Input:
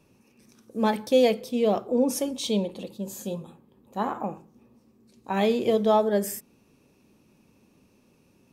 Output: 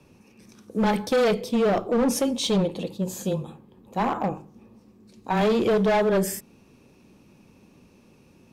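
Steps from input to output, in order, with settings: saturation -18 dBFS, distortion -14 dB; frequency shift -13 Hz; hard clipper -24 dBFS, distortion -11 dB; treble shelf 9.1 kHz -8 dB; trim +6.5 dB

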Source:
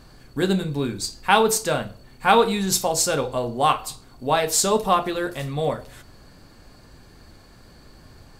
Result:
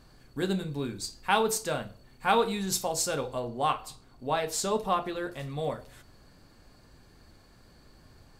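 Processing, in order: 3.40–5.50 s: treble shelf 5.7 kHz -6 dB; trim -8 dB

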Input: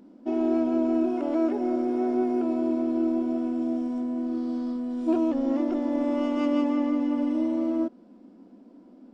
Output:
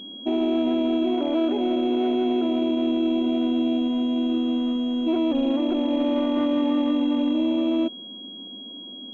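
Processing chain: peak limiter -21 dBFS, peak gain reduction 6.5 dB; class-D stage that switches slowly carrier 3.3 kHz; trim +5.5 dB

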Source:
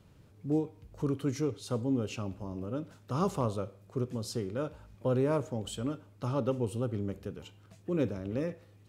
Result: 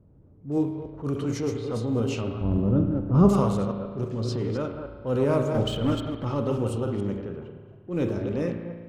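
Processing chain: chunks repeated in reverse 143 ms, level -6 dB; level-controlled noise filter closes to 490 Hz, open at -26.5 dBFS; 2.41–3.29 s: tilt EQ -4.5 dB/octave; 5.54–6.25 s: waveshaping leveller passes 2; transient shaper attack -8 dB, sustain 0 dB; spring tank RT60 1.6 s, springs 35 ms, chirp 20 ms, DRR 6 dB; 4.19–4.62 s: level flattener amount 70%; trim +5 dB

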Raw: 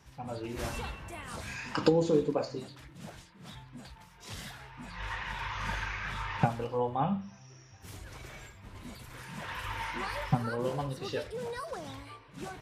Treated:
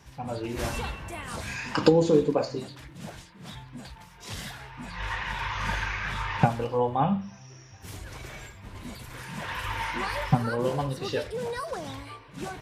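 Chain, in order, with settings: band-stop 1.3 kHz, Q 27; trim +5.5 dB

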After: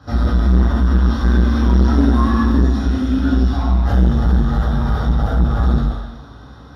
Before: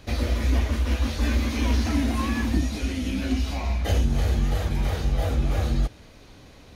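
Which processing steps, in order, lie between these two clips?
reverberation RT60 1.1 s, pre-delay 3 ms, DRR -6 dB; transformer saturation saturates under 170 Hz; trim -8.5 dB

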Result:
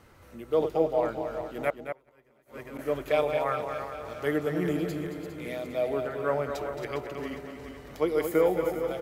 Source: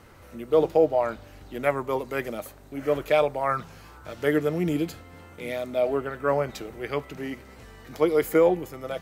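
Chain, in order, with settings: backward echo that repeats 203 ms, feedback 69%, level -8.5 dB; 1.70–2.79 s: inverted gate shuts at -23 dBFS, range -30 dB; echo from a far wall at 38 m, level -7 dB; trim -5 dB

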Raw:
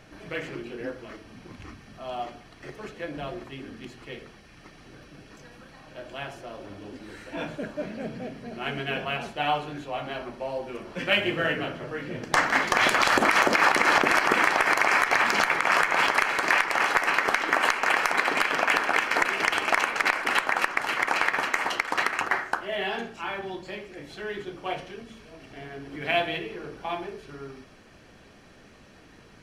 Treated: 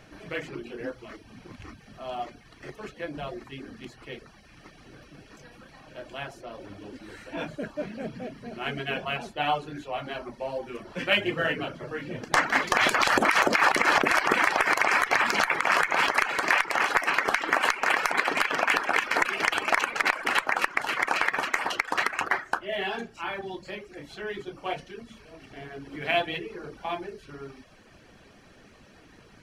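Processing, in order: reverb removal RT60 0.53 s

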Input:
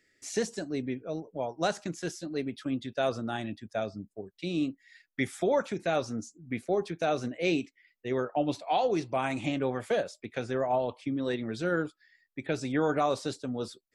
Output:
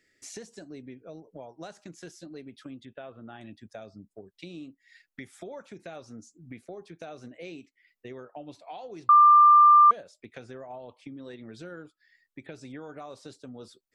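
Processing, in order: compression 4:1, threshold -42 dBFS, peak gain reduction 16.5 dB; 2.85–3.41 s: elliptic low-pass 3.3 kHz, stop band 40 dB; 9.09–9.91 s: bleep 1.19 kHz -12 dBFS

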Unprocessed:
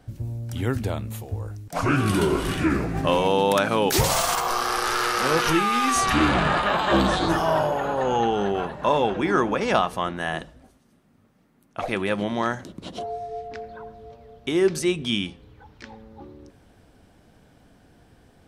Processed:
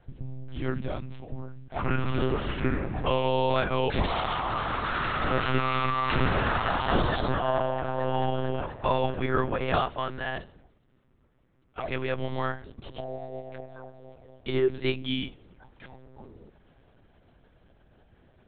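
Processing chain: monotone LPC vocoder at 8 kHz 130 Hz; trim -4.5 dB

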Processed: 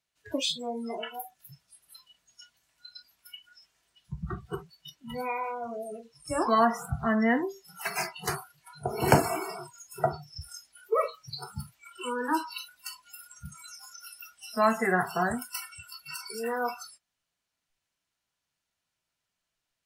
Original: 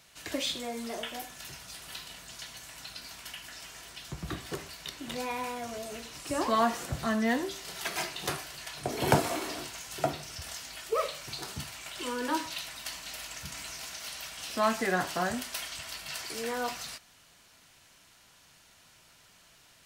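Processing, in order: spectral noise reduction 29 dB; trim +3.5 dB

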